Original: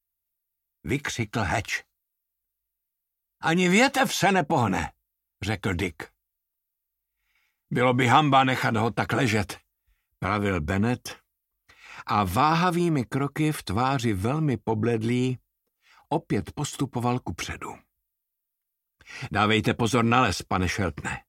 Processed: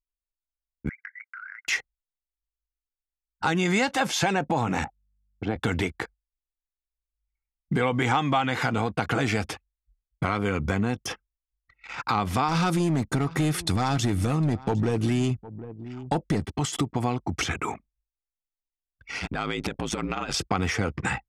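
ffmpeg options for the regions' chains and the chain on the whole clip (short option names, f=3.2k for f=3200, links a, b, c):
-filter_complex "[0:a]asettb=1/sr,asplit=3[a][b][c];[a]atrim=end=0.894[d];[b]atrim=start=0.89:end=1.68,asetpts=PTS-STARTPTS,afade=t=in:d=0.004:c=qsin,afade=t=out:st=0.786:d=0.004:c=qsin,asuperpass=centerf=1700:order=8:qfactor=2.1,acompressor=threshold=-43dB:ratio=6:attack=3.2:release=140:knee=1:detection=peak[e];[c]atrim=start=1.676[f];[d][e]acrossfade=d=0.004:c1=hsin:c2=qsin[g];[g][f]acrossfade=d=0.004:c1=qsin:c2=hsin,asettb=1/sr,asplit=3[h][i][j];[h]atrim=end=4.844[k];[i]atrim=start=4.84:end=5.56,asetpts=PTS-STARTPTS,afade=t=in:d=0.004:c=qsin,afade=t=out:st=0.716:d=0.004:c=qsin,bandpass=f=380:t=q:w=0.69,aeval=exprs='val(0)+0.000355*(sin(2*PI*50*n/s)+sin(2*PI*2*50*n/s)/2+sin(2*PI*3*50*n/s)/3+sin(2*PI*4*50*n/s)/4+sin(2*PI*5*50*n/s)/5)':c=same[l];[j]atrim=start=5.556[m];[k][l]acrossfade=d=0.004:c1=hsin:c2=qsin[n];[n][m]acrossfade=d=0.004:c1=qsin:c2=hsin,asettb=1/sr,asplit=3[o][p][q];[o]atrim=end=12.484[r];[p]atrim=start=12.48:end=16.43,asetpts=PTS-STARTPTS,afade=t=in:d=0.004:c=qsin,afade=t=out:st=3.946:d=0.004:c=qsin,bass=f=250:g=4,treble=f=4k:g=7,asoftclip=type=hard:threshold=-18dB,aecho=1:1:756:0.0841,atrim=end_sample=174195[s];[q]atrim=start=16.426[t];[r][s]acrossfade=d=0.004:c1=hsin:c2=qsin[u];[u][t]acrossfade=d=0.004:c1=qsin:c2=hsin,asettb=1/sr,asplit=3[v][w][x];[v]atrim=end=19.194[y];[w]atrim=start=19.19:end=20.34,asetpts=PTS-STARTPTS,afade=t=in:d=0.004:c=qsin,afade=t=out:st=1.146:d=0.004:c=qsin,equalizer=f=79:w=0.9:g=-5.5,acompressor=threshold=-28dB:ratio=8:attack=3.2:release=140:knee=1:detection=peak,aeval=exprs='val(0)*sin(2*PI*53*n/s)':c=same[z];[x]atrim=start=20.336[aa];[y][z]acrossfade=d=0.004:c1=hsin:c2=qsin[ab];[ab][aa]acrossfade=d=0.004:c1=qsin:c2=hsin,anlmdn=0.0398,lowpass=9.5k,acompressor=threshold=-31dB:ratio=3,volume=7dB"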